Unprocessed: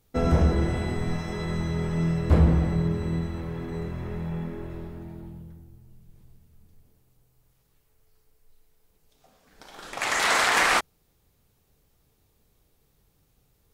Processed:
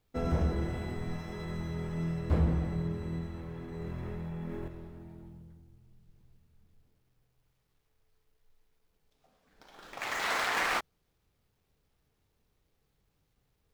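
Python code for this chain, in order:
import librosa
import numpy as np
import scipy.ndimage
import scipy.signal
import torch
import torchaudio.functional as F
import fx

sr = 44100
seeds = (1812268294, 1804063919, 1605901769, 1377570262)

y = scipy.ndimage.median_filter(x, 5, mode='constant')
y = fx.quant_dither(y, sr, seeds[0], bits=12, dither='none')
y = fx.env_flatten(y, sr, amount_pct=100, at=(3.8, 4.68))
y = F.gain(torch.from_numpy(y), -8.5).numpy()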